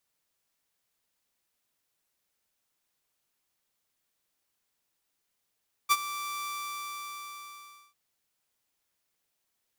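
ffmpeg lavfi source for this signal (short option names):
-f lavfi -i "aevalsrc='0.168*(2*mod(1170*t,1)-1)':d=2.05:s=44100,afade=t=in:d=0.027,afade=t=out:st=0.027:d=0.042:silence=0.168,afade=t=out:st=0.55:d=1.5"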